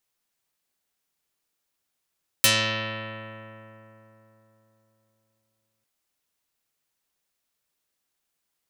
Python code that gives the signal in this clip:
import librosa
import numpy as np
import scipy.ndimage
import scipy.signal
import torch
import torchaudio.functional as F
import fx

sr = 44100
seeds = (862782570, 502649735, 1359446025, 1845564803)

y = fx.pluck(sr, length_s=3.4, note=45, decay_s=3.73, pick=0.27, brightness='dark')